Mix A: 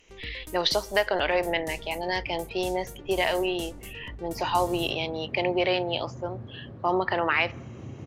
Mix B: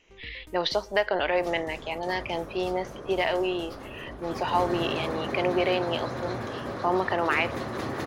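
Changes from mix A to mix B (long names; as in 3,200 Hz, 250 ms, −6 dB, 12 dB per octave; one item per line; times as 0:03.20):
first sound −5.0 dB
second sound: remove resonant band-pass 110 Hz, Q 1.3
master: add parametric band 12,000 Hz −12.5 dB 1.8 octaves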